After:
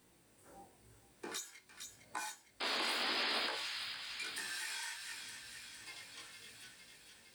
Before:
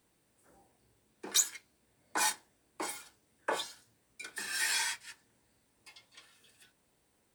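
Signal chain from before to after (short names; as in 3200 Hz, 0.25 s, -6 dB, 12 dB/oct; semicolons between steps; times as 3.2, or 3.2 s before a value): harmonic-percussive split harmonic +7 dB; compressor 16:1, threshold -42 dBFS, peak gain reduction 21.5 dB; painted sound noise, 2.6–3.47, 210–5100 Hz -38 dBFS; chorus 0.89 Hz, delay 16.5 ms, depth 5.1 ms; thin delay 0.458 s, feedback 65%, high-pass 1600 Hz, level -6 dB; gain +4 dB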